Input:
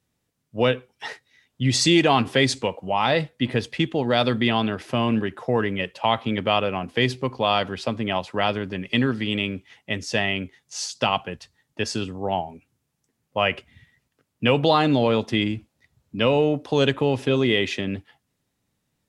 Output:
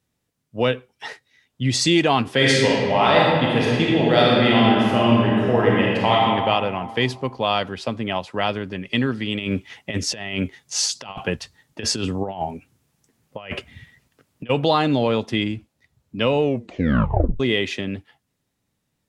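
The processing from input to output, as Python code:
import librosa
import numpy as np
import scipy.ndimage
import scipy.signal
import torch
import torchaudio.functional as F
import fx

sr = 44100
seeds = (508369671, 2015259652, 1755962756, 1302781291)

y = fx.reverb_throw(x, sr, start_s=2.34, length_s=3.8, rt60_s=2.1, drr_db=-5.0)
y = fx.over_compress(y, sr, threshold_db=-29.0, ratio=-0.5, at=(9.38, 14.49), fade=0.02)
y = fx.edit(y, sr, fx.tape_stop(start_s=16.42, length_s=0.98), tone=tone)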